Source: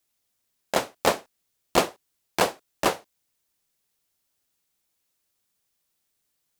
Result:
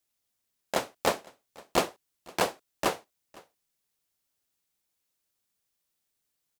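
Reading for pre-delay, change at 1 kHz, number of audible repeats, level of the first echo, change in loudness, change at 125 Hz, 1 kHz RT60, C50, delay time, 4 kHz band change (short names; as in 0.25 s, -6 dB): none, -4.5 dB, 1, -24.0 dB, -4.5 dB, -4.5 dB, none, none, 0.509 s, -4.5 dB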